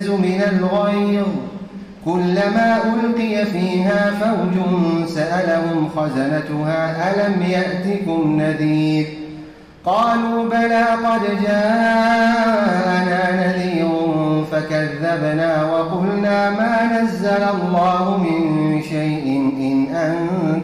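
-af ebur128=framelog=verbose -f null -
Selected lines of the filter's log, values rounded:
Integrated loudness:
  I:         -17.6 LUFS
  Threshold: -27.8 LUFS
Loudness range:
  LRA:         2.8 LU
  Threshold: -37.7 LUFS
  LRA low:   -18.8 LUFS
  LRA high:  -16.0 LUFS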